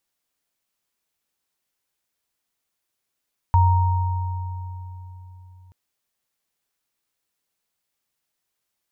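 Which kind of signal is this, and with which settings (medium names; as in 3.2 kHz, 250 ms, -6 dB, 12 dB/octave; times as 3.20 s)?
sine partials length 2.18 s, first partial 91.4 Hz, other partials 933 Hz, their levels -4.5 dB, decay 3.85 s, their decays 2.80 s, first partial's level -12.5 dB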